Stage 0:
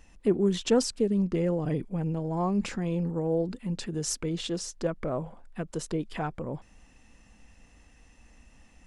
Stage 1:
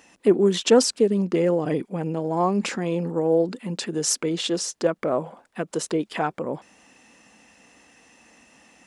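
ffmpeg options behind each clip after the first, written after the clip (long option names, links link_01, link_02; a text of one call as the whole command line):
ffmpeg -i in.wav -af "highpass=260,volume=8.5dB" out.wav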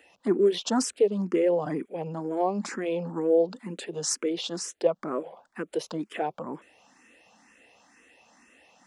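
ffmpeg -i in.wav -filter_complex "[0:a]bass=frequency=250:gain=-7,treble=frequency=4000:gain=-5,acrossover=split=100|1200|3800[link_01][link_02][link_03][link_04];[link_03]alimiter=level_in=6.5dB:limit=-24dB:level=0:latency=1:release=168,volume=-6.5dB[link_05];[link_01][link_02][link_05][link_04]amix=inputs=4:normalize=0,asplit=2[link_06][link_07];[link_07]afreqshift=2.1[link_08];[link_06][link_08]amix=inputs=2:normalize=1" out.wav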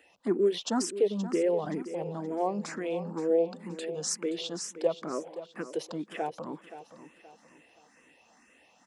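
ffmpeg -i in.wav -af "aecho=1:1:524|1048|1572|2096:0.224|0.0828|0.0306|0.0113,volume=-3.5dB" out.wav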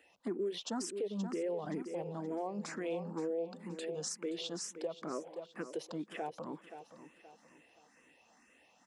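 ffmpeg -i in.wav -af "alimiter=level_in=0.5dB:limit=-24dB:level=0:latency=1:release=168,volume=-0.5dB,volume=-4.5dB" out.wav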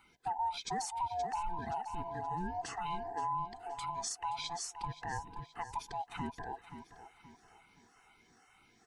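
ffmpeg -i in.wav -af "afftfilt=real='real(if(lt(b,1008),b+24*(1-2*mod(floor(b/24),2)),b),0)':imag='imag(if(lt(b,1008),b+24*(1-2*mod(floor(b/24),2)),b),0)':win_size=2048:overlap=0.75,volume=1dB" out.wav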